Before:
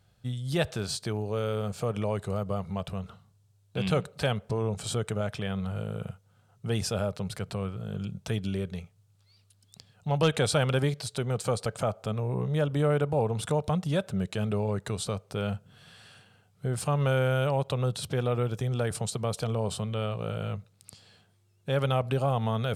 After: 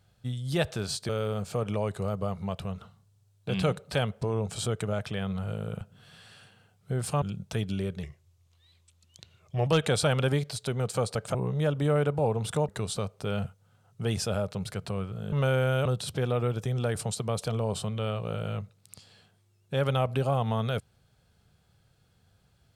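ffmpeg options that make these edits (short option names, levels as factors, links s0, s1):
-filter_complex "[0:a]asplit=11[s0][s1][s2][s3][s4][s5][s6][s7][s8][s9][s10];[s0]atrim=end=1.092[s11];[s1]atrim=start=1.368:end=6.092[s12];[s2]atrim=start=15.548:end=16.962[s13];[s3]atrim=start=7.968:end=8.784[s14];[s4]atrim=start=8.78:end=10.17,asetpts=PTS-STARTPTS,asetrate=37485,aresample=44100,atrim=end_sample=72116,asetpts=PTS-STARTPTS[s15];[s5]atrim=start=10.166:end=11.852[s16];[s6]atrim=start=12.288:end=13.632[s17];[s7]atrim=start=14.788:end=15.552[s18];[s8]atrim=start=6.088:end=7.972[s19];[s9]atrim=start=16.958:end=17.492[s20];[s10]atrim=start=17.808[s21];[s11][s12]acrossfade=d=0.004:c1=hsin:c2=hsin[s22];[s22][s13]acrossfade=d=0.004:c1=hsin:c2=hsin[s23];[s23][s14]acrossfade=d=0.004:c1=hsin:c2=hsin[s24];[s24][s15]acrossfade=d=0.004:c1=hsin:c2=hsin[s25];[s25][s16]acrossfade=d=0.004:c1=hsin:c2=hsin[s26];[s26][s17]acrossfade=d=0.004:c1=hsin:c2=hsin[s27];[s27][s18]acrossfade=d=0.004:c1=hsin:c2=hsin[s28];[s28][s19]acrossfade=d=0.004:c1=hsin:c2=hsin[s29];[s29][s20]acrossfade=d=0.004:c1=hsin:c2=hsin[s30];[s30][s21]acrossfade=d=0.004:c1=hsin:c2=hsin"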